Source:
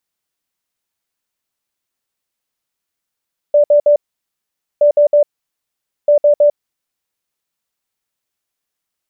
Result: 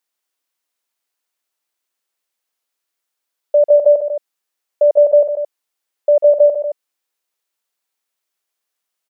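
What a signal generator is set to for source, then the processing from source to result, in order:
beeps in groups sine 587 Hz, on 0.10 s, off 0.06 s, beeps 3, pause 0.85 s, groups 3, −6 dBFS
high-pass filter 350 Hz 12 dB per octave
on a send: loudspeakers that aren't time-aligned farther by 49 metres −9 dB, 75 metres −10 dB

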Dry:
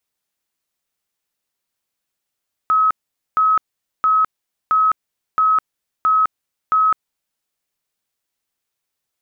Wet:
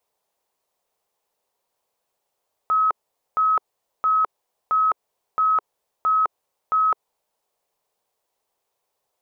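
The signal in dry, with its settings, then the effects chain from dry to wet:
tone bursts 1,280 Hz, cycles 265, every 0.67 s, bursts 7, −11.5 dBFS
flat-topped bell 650 Hz +12.5 dB
brickwall limiter −15.5 dBFS

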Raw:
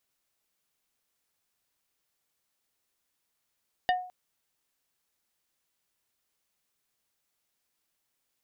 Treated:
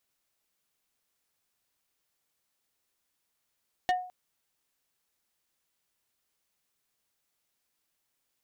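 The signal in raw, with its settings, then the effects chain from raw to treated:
struck wood plate, length 0.21 s, lowest mode 730 Hz, decay 0.48 s, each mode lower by 4.5 dB, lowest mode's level −20 dB
gain into a clipping stage and back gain 21 dB

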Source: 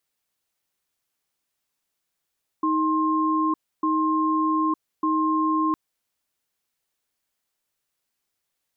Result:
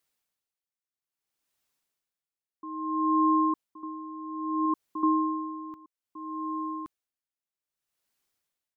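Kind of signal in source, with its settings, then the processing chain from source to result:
tone pair in a cadence 314 Hz, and 1,060 Hz, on 0.91 s, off 0.29 s, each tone −22 dBFS 3.11 s
on a send: single-tap delay 1,121 ms −10 dB
on the sum: tremolo with a sine in dB 0.61 Hz, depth 19 dB

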